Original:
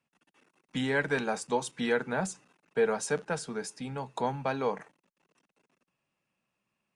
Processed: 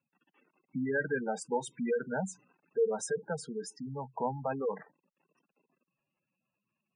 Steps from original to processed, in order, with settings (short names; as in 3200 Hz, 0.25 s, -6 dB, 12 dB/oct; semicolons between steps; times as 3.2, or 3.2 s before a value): spectral gate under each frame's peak -10 dB strong; gain -1.5 dB